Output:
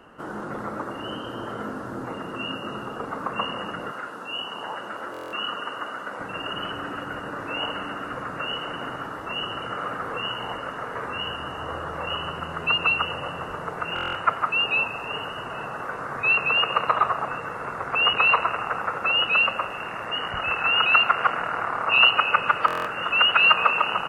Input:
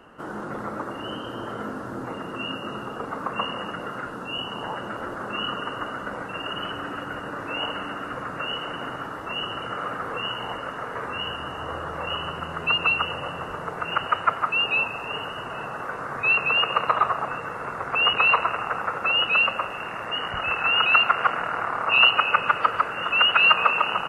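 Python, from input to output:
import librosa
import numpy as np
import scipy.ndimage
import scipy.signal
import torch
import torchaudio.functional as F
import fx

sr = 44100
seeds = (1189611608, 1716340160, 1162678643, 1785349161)

y = fx.highpass(x, sr, hz=500.0, slope=6, at=(3.91, 6.2))
y = fx.buffer_glitch(y, sr, at_s=(5.12, 13.94, 22.66), block=1024, repeats=8)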